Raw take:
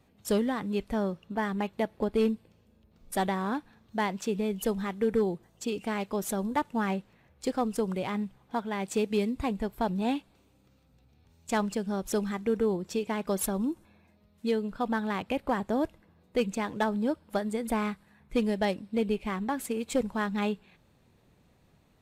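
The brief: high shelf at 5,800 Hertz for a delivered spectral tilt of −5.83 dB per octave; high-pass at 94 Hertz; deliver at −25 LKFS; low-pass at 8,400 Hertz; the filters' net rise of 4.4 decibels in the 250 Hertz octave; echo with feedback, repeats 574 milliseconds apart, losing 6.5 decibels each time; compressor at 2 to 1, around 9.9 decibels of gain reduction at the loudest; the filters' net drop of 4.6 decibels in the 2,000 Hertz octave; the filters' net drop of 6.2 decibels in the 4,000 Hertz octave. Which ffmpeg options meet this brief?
ffmpeg -i in.wav -af "highpass=94,lowpass=8400,equalizer=frequency=250:width_type=o:gain=5.5,equalizer=frequency=2000:width_type=o:gain=-4.5,equalizer=frequency=4000:width_type=o:gain=-5,highshelf=frequency=5800:gain=-4,acompressor=threshold=-38dB:ratio=2,aecho=1:1:574|1148|1722|2296|2870|3444:0.473|0.222|0.105|0.0491|0.0231|0.0109,volume=11dB" out.wav

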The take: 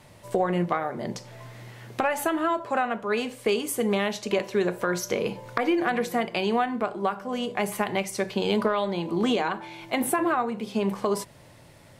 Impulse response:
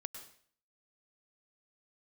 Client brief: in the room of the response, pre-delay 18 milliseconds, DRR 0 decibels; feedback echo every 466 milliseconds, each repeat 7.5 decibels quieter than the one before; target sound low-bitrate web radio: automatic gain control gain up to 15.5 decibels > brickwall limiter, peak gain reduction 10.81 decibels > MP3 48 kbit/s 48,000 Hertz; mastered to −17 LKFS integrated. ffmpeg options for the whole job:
-filter_complex "[0:a]aecho=1:1:466|932|1398|1864|2330:0.422|0.177|0.0744|0.0312|0.0131,asplit=2[link_01][link_02];[1:a]atrim=start_sample=2205,adelay=18[link_03];[link_02][link_03]afir=irnorm=-1:irlink=0,volume=2.5dB[link_04];[link_01][link_04]amix=inputs=2:normalize=0,dynaudnorm=maxgain=15.5dB,alimiter=limit=-18.5dB:level=0:latency=1,volume=11dB" -ar 48000 -c:a libmp3lame -b:a 48k

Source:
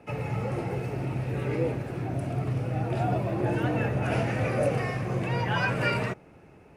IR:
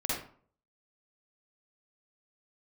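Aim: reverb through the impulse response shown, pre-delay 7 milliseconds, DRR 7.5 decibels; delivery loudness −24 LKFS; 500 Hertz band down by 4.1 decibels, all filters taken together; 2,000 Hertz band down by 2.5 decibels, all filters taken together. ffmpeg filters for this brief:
-filter_complex "[0:a]equalizer=frequency=500:width_type=o:gain=-5,equalizer=frequency=2000:width_type=o:gain=-3,asplit=2[link_01][link_02];[1:a]atrim=start_sample=2205,adelay=7[link_03];[link_02][link_03]afir=irnorm=-1:irlink=0,volume=-14dB[link_04];[link_01][link_04]amix=inputs=2:normalize=0,volume=5.5dB"

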